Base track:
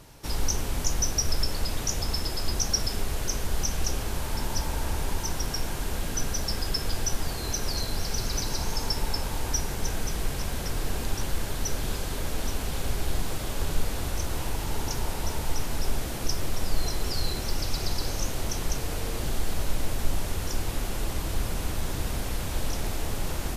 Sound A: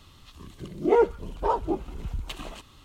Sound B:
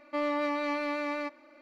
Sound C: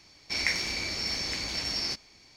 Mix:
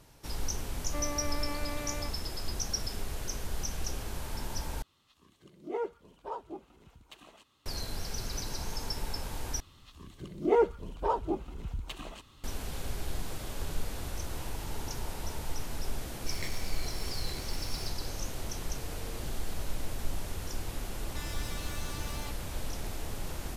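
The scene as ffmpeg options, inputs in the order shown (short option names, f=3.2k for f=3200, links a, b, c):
-filter_complex "[2:a]asplit=2[a][b];[1:a]asplit=2[c][d];[0:a]volume=-7.5dB[e];[c]highpass=f=260:p=1[f];[3:a]aeval=exprs='max(val(0),0)':c=same[g];[b]aeval=exprs='0.0112*(abs(mod(val(0)/0.0112+3,4)-2)-1)':c=same[h];[e]asplit=3[i][j][k];[i]atrim=end=4.824[l];[f]atrim=end=2.84,asetpts=PTS-STARTPTS,volume=-13.5dB[m];[j]atrim=start=7.656:end=9.604[n];[d]atrim=end=2.84,asetpts=PTS-STARTPTS,volume=-4.5dB[o];[k]atrim=start=12.436[p];[a]atrim=end=1.61,asetpts=PTS-STARTPTS,volume=-8dB,afade=t=in:d=0.004:c=hsin,afade=t=out:st=1.606:d=0.004:c=hsin,adelay=800[q];[g]atrim=end=2.36,asetpts=PTS-STARTPTS,volume=-9dB,afade=t=in:d=0.004:c=hsin,afade=t=out:st=2.356:d=0.004:c=hsin,adelay=15960[r];[h]atrim=end=1.61,asetpts=PTS-STARTPTS,volume=-1.5dB,afade=t=in:d=0.004:c=hsin,afade=t=out:st=1.606:d=0.004:c=hsin,adelay=21020[s];[l][m]acrossfade=d=0.004:c1=hsin:c2=hsin[t];[t][n]acrossfade=d=0.004:c1=hsin:c2=hsin[u];[u][o]acrossfade=d=0.004:c1=hsin:c2=hsin[v];[v][p]acrossfade=d=0.004:c1=hsin:c2=hsin[w];[w][q][r][s]amix=inputs=4:normalize=0"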